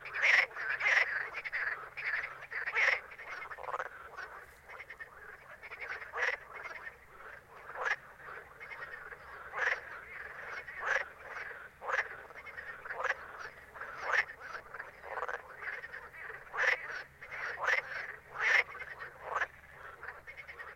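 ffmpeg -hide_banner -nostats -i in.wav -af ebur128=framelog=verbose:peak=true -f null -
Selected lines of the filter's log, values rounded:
Integrated loudness:
  I:         -34.9 LUFS
  Threshold: -46.0 LUFS
Loudness range:
  LRA:         8.0 LU
  Threshold: -57.0 LUFS
  LRA low:   -41.6 LUFS
  LRA high:  -33.6 LUFS
True peak:
  Peak:      -11.9 dBFS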